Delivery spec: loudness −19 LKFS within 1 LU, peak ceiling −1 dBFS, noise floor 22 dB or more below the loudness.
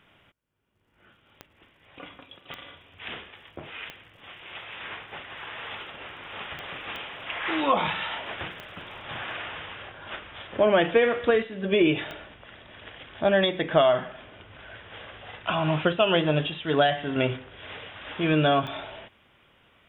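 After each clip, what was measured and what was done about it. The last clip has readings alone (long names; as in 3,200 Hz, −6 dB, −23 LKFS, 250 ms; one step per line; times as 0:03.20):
number of clicks 8; integrated loudness −26.0 LKFS; sample peak −5.5 dBFS; target loudness −19.0 LKFS
→ click removal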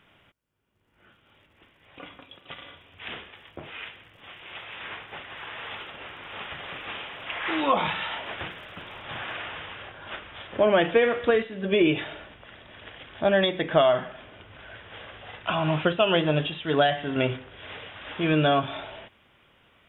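number of clicks 0; integrated loudness −26.0 LKFS; sample peak −5.5 dBFS; target loudness −19.0 LKFS
→ level +7 dB
brickwall limiter −1 dBFS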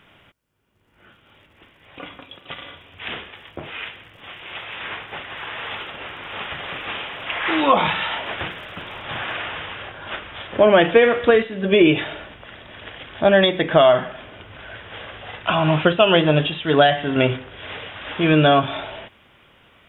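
integrated loudness −19.0 LKFS; sample peak −1.0 dBFS; background noise floor −55 dBFS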